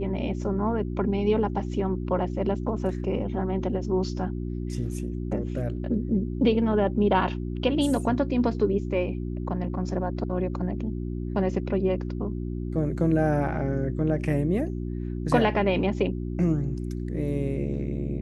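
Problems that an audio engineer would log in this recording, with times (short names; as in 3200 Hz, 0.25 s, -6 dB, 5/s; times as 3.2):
hum 60 Hz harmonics 6 -31 dBFS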